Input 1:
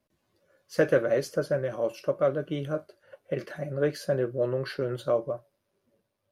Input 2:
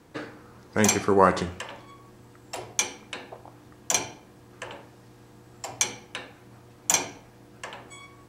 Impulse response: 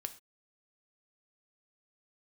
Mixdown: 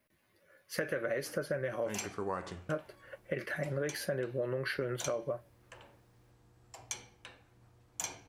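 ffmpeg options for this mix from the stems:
-filter_complex "[0:a]alimiter=limit=-19dB:level=0:latency=1:release=103,aexciter=amount=2.3:drive=5.2:freq=9500,equalizer=frequency=2000:width_type=o:width=0.89:gain=10.5,volume=-1dB,asplit=3[link_01][link_02][link_03];[link_01]atrim=end=2.07,asetpts=PTS-STARTPTS,afade=type=out:start_time=2.066:duration=0.004:curve=hsin[link_04];[link_02]atrim=start=2.07:end=2.69,asetpts=PTS-STARTPTS,volume=0[link_05];[link_03]atrim=start=2.69,asetpts=PTS-STARTPTS,afade=type=in:duration=0.004:curve=hsin[link_06];[link_04][link_05][link_06]concat=n=3:v=0:a=1[link_07];[1:a]asubboost=boost=4:cutoff=100,adelay=1100,volume=-15dB[link_08];[link_07][link_08]amix=inputs=2:normalize=0,acompressor=threshold=-31dB:ratio=6"

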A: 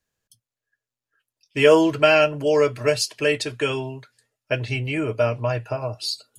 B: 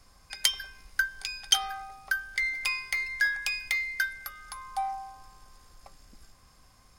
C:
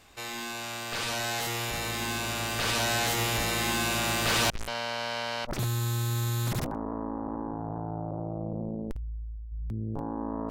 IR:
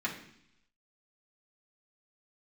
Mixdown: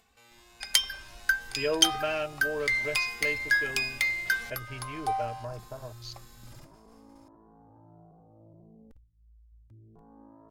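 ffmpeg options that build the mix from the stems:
-filter_complex "[0:a]afwtdn=0.0355,volume=-15dB[link_01];[1:a]agate=range=-33dB:threshold=-51dB:ratio=3:detection=peak,adelay=300,volume=1.5dB[link_02];[2:a]acompressor=mode=upward:threshold=-37dB:ratio=2.5,asplit=2[link_03][link_04];[link_04]adelay=2.3,afreqshift=1.6[link_05];[link_03][link_05]amix=inputs=2:normalize=1,volume=-18dB[link_06];[link_01][link_02][link_06]amix=inputs=3:normalize=0"

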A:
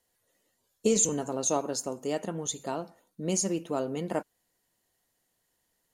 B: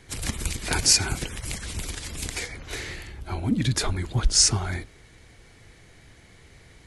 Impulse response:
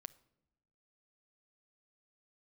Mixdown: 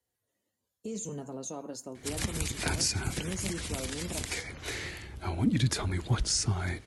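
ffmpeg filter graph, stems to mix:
-filter_complex "[0:a]lowshelf=frequency=220:gain=11.5,flanger=delay=2.2:depth=2.9:regen=-61:speed=0.44:shape=triangular,alimiter=limit=-23dB:level=0:latency=1:release=38,volume=-6dB[link_01];[1:a]adelay=1950,volume=-2dB[link_02];[link_01][link_02]amix=inputs=2:normalize=0,highpass=64,acrossover=split=270[link_03][link_04];[link_04]acompressor=threshold=-31dB:ratio=2.5[link_05];[link_03][link_05]amix=inputs=2:normalize=0"

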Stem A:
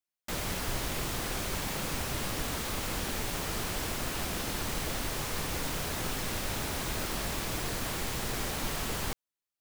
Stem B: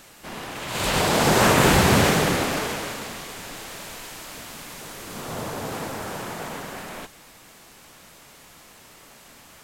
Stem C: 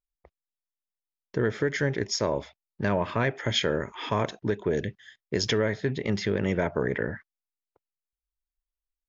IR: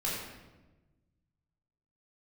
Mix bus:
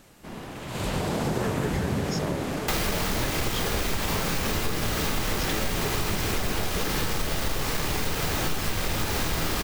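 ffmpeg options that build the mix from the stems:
-filter_complex "[0:a]equalizer=frequency=9800:width_type=o:width=0.77:gain=-4,aeval=exprs='0.1*sin(PI/2*3.16*val(0)/0.1)':channel_layout=same,adelay=2400,volume=0dB,asplit=2[link_01][link_02];[link_02]volume=-3.5dB[link_03];[1:a]lowshelf=frequency=500:gain=11.5,volume=-9dB[link_04];[2:a]volume=-1dB[link_05];[3:a]atrim=start_sample=2205[link_06];[link_03][link_06]afir=irnorm=-1:irlink=0[link_07];[link_01][link_04][link_05][link_07]amix=inputs=4:normalize=0,acompressor=threshold=-24dB:ratio=5"

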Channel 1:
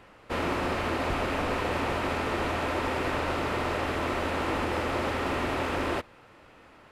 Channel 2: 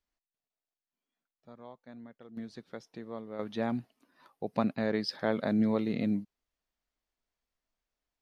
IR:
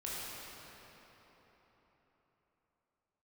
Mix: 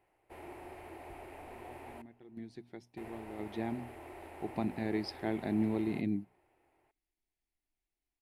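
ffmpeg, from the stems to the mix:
-filter_complex "[0:a]lowshelf=frequency=380:width_type=q:width=1.5:gain=-10.5,volume=-11dB,asplit=3[link_01][link_02][link_03];[link_01]atrim=end=2.02,asetpts=PTS-STARTPTS,afade=type=out:start_time=2.016:duration=0.004:curve=hsin[link_04];[link_02]atrim=start=2.02:end=2.97,asetpts=PTS-STARTPTS,volume=0[link_05];[link_03]atrim=start=2.97,asetpts=PTS-STARTPTS,afade=type=in:duration=0.004:curve=hsin[link_06];[link_04][link_05][link_06]concat=n=3:v=0:a=1,asplit=2[link_07][link_08];[link_08]volume=-23dB[link_09];[1:a]lowpass=4100,bandreject=frequency=60:width_type=h:width=6,bandreject=frequency=120:width_type=h:width=6,bandreject=frequency=180:width_type=h:width=6,bandreject=frequency=240:width_type=h:width=6,crystalizer=i=7:c=0,volume=0dB[link_10];[2:a]atrim=start_sample=2205[link_11];[link_09][link_11]afir=irnorm=-1:irlink=0[link_12];[link_07][link_10][link_12]amix=inputs=3:normalize=0,firequalizer=gain_entry='entry(120,0);entry(220,-6);entry(350,4);entry(500,-16);entry(770,-5);entry(1200,-20);entry(2100,-9);entry(3400,-18);entry(6200,-17);entry(10000,-1)':delay=0.05:min_phase=1"

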